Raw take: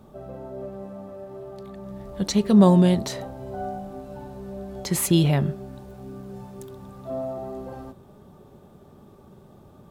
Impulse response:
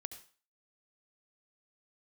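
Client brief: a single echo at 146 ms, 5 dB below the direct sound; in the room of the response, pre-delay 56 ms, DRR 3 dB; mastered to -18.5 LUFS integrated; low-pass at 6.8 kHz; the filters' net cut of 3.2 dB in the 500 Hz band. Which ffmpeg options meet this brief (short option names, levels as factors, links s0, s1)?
-filter_complex "[0:a]lowpass=6800,equalizer=f=500:t=o:g=-4.5,aecho=1:1:146:0.562,asplit=2[s0][s1];[1:a]atrim=start_sample=2205,adelay=56[s2];[s1][s2]afir=irnorm=-1:irlink=0,volume=1[s3];[s0][s3]amix=inputs=2:normalize=0,volume=0.944"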